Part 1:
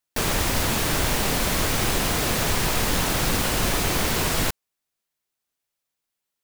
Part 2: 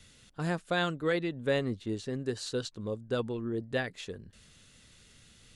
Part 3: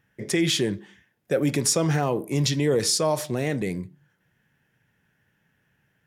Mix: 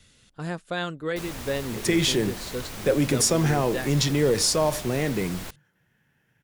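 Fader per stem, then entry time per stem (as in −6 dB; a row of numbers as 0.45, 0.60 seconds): −14.5, 0.0, +0.5 decibels; 1.00, 0.00, 1.55 seconds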